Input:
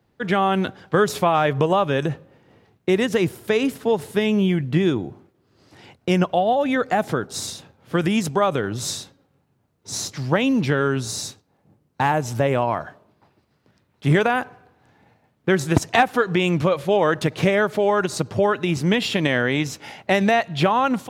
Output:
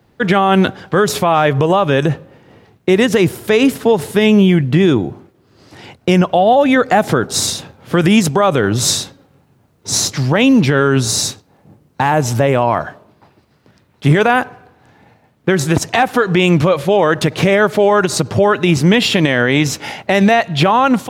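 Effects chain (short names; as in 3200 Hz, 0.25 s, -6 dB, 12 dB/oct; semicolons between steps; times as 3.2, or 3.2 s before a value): in parallel at +2.5 dB: vocal rider within 4 dB 0.5 s; on the sum: limiter -5.5 dBFS, peak gain reduction 9.5 dB; gain +3 dB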